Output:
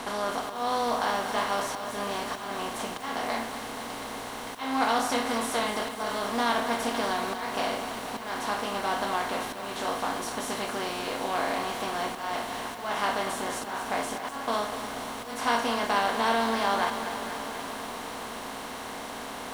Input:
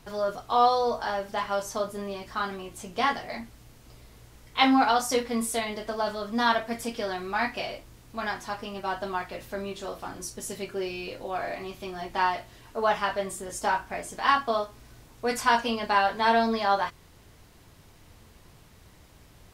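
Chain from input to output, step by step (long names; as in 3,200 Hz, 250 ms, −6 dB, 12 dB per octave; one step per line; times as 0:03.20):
compressor on every frequency bin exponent 0.4
volume swells 260 ms
feedback echo at a low word length 242 ms, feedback 80%, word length 6 bits, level −10 dB
level −8 dB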